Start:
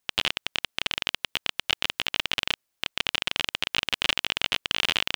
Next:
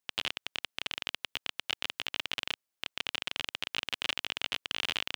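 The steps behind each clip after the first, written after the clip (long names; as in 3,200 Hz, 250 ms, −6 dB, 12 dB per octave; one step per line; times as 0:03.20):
low-shelf EQ 65 Hz −11 dB
level −8 dB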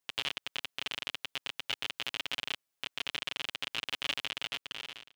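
fade-out on the ending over 1.09 s
comb filter 7.2 ms, depth 71%
brickwall limiter −17 dBFS, peak gain reduction 7 dB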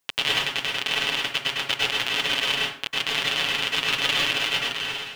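dense smooth reverb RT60 0.53 s, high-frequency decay 0.65×, pre-delay 90 ms, DRR −5 dB
level +8.5 dB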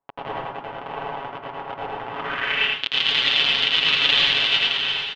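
low-pass filter sweep 880 Hz → 3,700 Hz, 0:02.08–0:02.82
single-tap delay 83 ms −3.5 dB
level −1.5 dB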